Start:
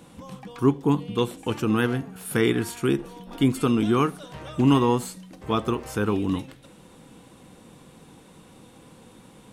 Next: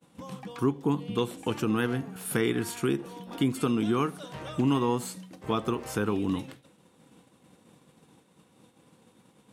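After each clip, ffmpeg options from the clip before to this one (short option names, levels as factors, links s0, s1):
-af "agate=range=0.0224:threshold=0.00891:ratio=3:detection=peak,highpass=95,acompressor=threshold=0.0501:ratio=2"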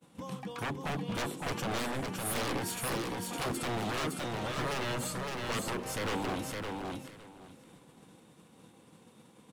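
-af "aeval=exprs='0.0335*(abs(mod(val(0)/0.0335+3,4)-2)-1)':c=same,aecho=1:1:561|1122|1683:0.668|0.12|0.0217"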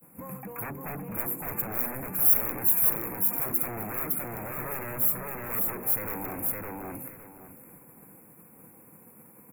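-af "asoftclip=type=tanh:threshold=0.0158,aexciter=amount=15.5:drive=8.8:freq=12000,asuperstop=centerf=4300:order=20:qfactor=0.97,volume=1.33"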